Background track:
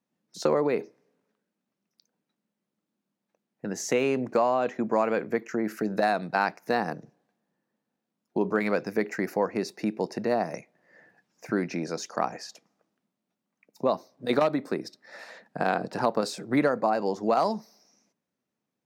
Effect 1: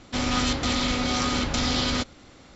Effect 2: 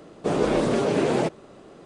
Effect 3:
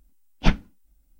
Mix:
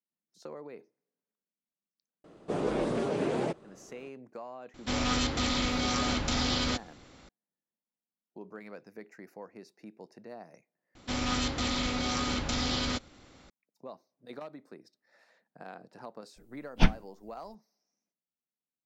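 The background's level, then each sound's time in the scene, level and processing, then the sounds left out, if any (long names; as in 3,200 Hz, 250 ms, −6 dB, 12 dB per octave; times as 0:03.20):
background track −20 dB
0:02.24: mix in 2 −8 dB + high-shelf EQ 3,700 Hz −4 dB
0:04.74: mix in 1 −4.5 dB
0:10.95: overwrite with 1 −6 dB
0:16.36: mix in 3 −3.5 dB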